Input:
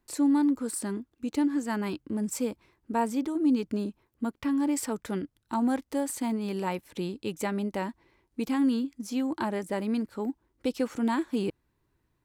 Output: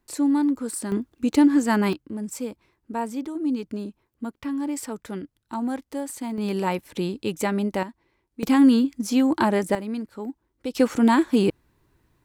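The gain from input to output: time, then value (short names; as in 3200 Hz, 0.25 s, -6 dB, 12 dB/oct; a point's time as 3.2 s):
+2.5 dB
from 0.92 s +9.5 dB
from 1.93 s -1 dB
from 6.38 s +6 dB
from 7.83 s -3.5 dB
from 8.43 s +9.5 dB
from 9.75 s -1 dB
from 10.75 s +9.5 dB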